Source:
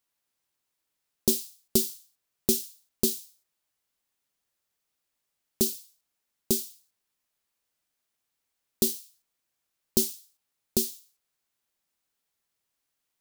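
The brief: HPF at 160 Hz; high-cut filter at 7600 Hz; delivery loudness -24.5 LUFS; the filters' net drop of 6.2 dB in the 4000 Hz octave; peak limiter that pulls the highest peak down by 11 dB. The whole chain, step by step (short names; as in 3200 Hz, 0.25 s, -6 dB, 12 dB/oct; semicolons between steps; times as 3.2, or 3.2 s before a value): HPF 160 Hz; LPF 7600 Hz; bell 4000 Hz -7.5 dB; gain +15 dB; limiter -7.5 dBFS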